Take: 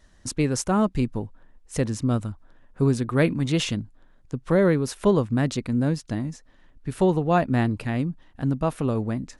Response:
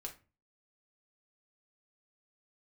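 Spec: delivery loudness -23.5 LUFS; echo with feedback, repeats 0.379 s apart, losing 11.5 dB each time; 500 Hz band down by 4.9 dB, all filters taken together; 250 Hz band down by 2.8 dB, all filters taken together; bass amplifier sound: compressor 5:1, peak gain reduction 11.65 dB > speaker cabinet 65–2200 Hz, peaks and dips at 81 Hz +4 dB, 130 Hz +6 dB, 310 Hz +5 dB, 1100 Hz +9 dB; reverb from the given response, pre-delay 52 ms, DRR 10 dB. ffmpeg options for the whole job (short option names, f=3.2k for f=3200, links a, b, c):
-filter_complex "[0:a]equalizer=f=250:t=o:g=-5.5,equalizer=f=500:t=o:g=-6,aecho=1:1:379|758|1137:0.266|0.0718|0.0194,asplit=2[a][b];[1:a]atrim=start_sample=2205,adelay=52[c];[b][c]afir=irnorm=-1:irlink=0,volume=-7dB[d];[a][d]amix=inputs=2:normalize=0,acompressor=threshold=-30dB:ratio=5,highpass=f=65:w=0.5412,highpass=f=65:w=1.3066,equalizer=f=81:t=q:w=4:g=4,equalizer=f=130:t=q:w=4:g=6,equalizer=f=310:t=q:w=4:g=5,equalizer=f=1.1k:t=q:w=4:g=9,lowpass=f=2.2k:w=0.5412,lowpass=f=2.2k:w=1.3066,volume=9dB"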